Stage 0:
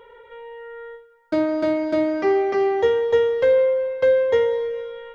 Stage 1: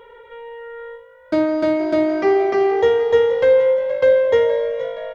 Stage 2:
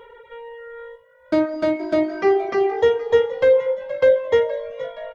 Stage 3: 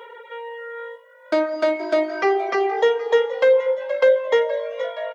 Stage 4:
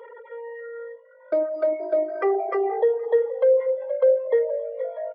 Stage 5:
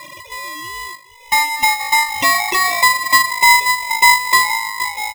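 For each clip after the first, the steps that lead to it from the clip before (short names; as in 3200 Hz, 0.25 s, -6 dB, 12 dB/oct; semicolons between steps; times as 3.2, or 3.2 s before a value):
frequency-shifting echo 0.471 s, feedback 48%, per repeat +52 Hz, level -14.5 dB; gain +3 dB
reverb removal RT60 0.94 s
in parallel at +0.5 dB: compressor, threshold -24 dBFS, peak gain reduction 13 dB; on the sum: HPF 510 Hz 12 dB/oct
formant sharpening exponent 2; gain -2.5 dB
wow and flutter 65 cents; polarity switched at an audio rate 1500 Hz; gain +7.5 dB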